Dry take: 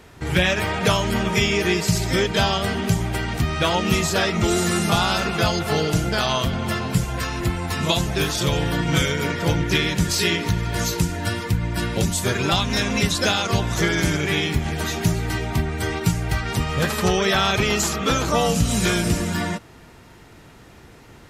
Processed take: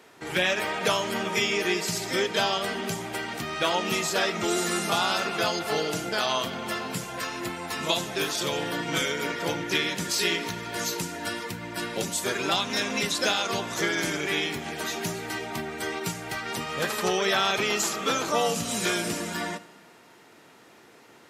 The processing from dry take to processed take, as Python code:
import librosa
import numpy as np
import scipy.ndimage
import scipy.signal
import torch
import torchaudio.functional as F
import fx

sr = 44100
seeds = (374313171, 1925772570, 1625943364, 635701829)

y = scipy.signal.sosfilt(scipy.signal.butter(2, 290.0, 'highpass', fs=sr, output='sos'), x)
y = fx.rev_schroeder(y, sr, rt60_s=1.2, comb_ms=27, drr_db=16.5)
y = F.gain(torch.from_numpy(y), -4.0).numpy()